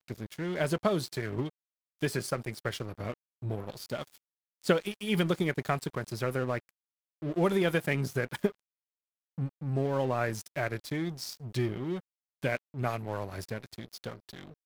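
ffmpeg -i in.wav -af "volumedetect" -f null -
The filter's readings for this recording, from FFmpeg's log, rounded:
mean_volume: -33.2 dB
max_volume: -11.9 dB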